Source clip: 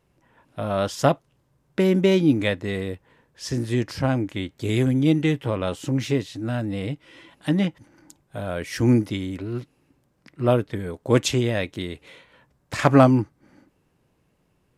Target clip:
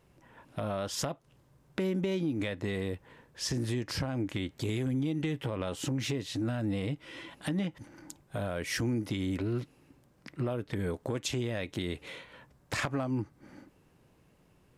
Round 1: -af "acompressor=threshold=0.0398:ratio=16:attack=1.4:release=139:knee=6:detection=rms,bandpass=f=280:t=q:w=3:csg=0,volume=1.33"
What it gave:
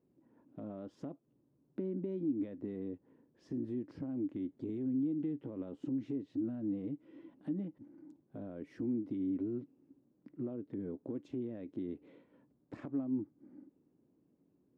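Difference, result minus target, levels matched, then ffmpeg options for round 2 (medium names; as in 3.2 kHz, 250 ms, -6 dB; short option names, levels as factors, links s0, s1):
250 Hz band +3.0 dB
-af "acompressor=threshold=0.0398:ratio=16:attack=1.4:release=139:knee=6:detection=rms,volume=1.33"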